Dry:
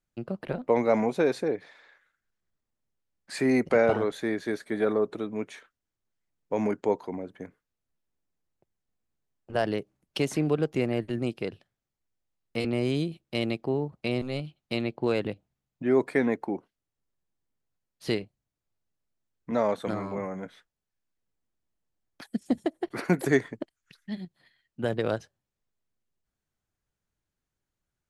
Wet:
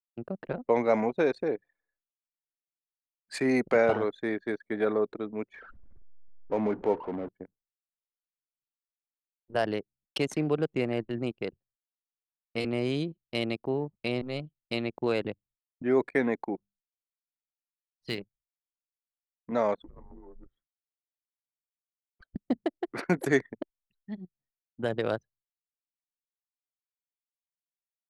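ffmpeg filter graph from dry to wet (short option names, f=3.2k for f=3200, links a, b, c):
-filter_complex "[0:a]asettb=1/sr,asplit=3[a][b][c];[a]atrim=end=5.534[d];[b]atrim=start=5.53:end=7.29,asetpts=PTS-STARTPTS,afade=t=in:d=0.004:c=qsin,afade=t=out:st=1.756:d=0.004:c=qsin,aeval=exprs='val(0)+0.5*0.0211*sgn(val(0))':c=same,lowpass=f=1.6k:p=1[e];[c]atrim=start=7.286[f];[d][e]acrossfade=d=0.004:c1=hsin:c2=qsin[g];[g][f]acrossfade=d=0.004:c1=qsin:c2=hsin,asettb=1/sr,asplit=3[h][i][j];[h]atrim=end=16.554[k];[i]atrim=start=16.55:end=18.18,asetpts=PTS-STARTPTS,afade=t=in:d=0.004:c=qsin,afade=t=out:st=1.626:d=0.004:c=qsin,bandreject=f=50:t=h:w=6,bandreject=f=100:t=h:w=6,bandreject=f=150:t=h:w=6,bandreject=f=200:t=h:w=6,bandreject=f=250:t=h:w=6,acrusher=bits=8:mode=log:mix=0:aa=0.000001,equalizer=f=520:w=0.57:g=-8[l];[j]atrim=start=18.176[m];[k][l]acrossfade=d=0.004:c1=hsin:c2=qsin[n];[n][m]acrossfade=d=0.004:c1=qsin:c2=hsin,asettb=1/sr,asplit=3[o][p][q];[o]atrim=end=19.804[r];[p]atrim=start=19.8:end=22.36,asetpts=PTS-STARTPTS,afade=t=in:d=0.004:c=qsin,afade=t=out:st=2.556:d=0.004:c=qsin,acompressor=threshold=-35dB:ratio=12:attack=3.2:release=140:knee=1:detection=peak,asoftclip=type=hard:threshold=-35dB,afreqshift=-170[s];[q]atrim=start=22.356[t];[r][s]acrossfade=d=0.004:c1=hsin:c2=qsin[u];[u][t]acrossfade=d=0.004:c1=qsin:c2=hsin,agate=range=-33dB:threshold=-56dB:ratio=3:detection=peak,lowshelf=f=300:g=-4.5,anlmdn=1.58"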